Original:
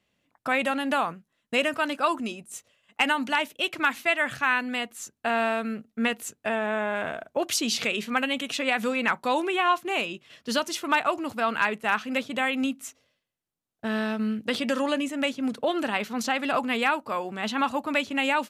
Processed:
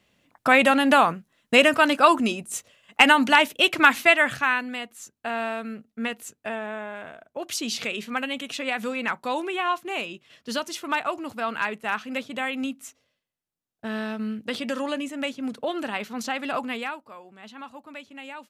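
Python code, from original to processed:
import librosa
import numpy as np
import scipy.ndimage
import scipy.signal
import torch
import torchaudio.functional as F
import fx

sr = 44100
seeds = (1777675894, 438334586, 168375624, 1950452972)

y = fx.gain(x, sr, db=fx.line((4.04, 8.0), (4.79, -3.5), (6.5, -3.5), (7.18, -10.5), (7.61, -2.5), (16.67, -2.5), (17.15, -15.0)))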